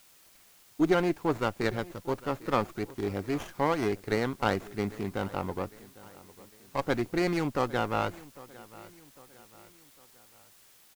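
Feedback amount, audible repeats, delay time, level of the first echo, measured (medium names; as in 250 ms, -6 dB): 47%, 3, 802 ms, -20.5 dB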